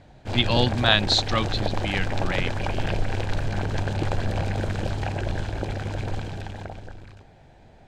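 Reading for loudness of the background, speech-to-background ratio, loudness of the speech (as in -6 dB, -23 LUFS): -29.0 LUFS, 5.0 dB, -24.0 LUFS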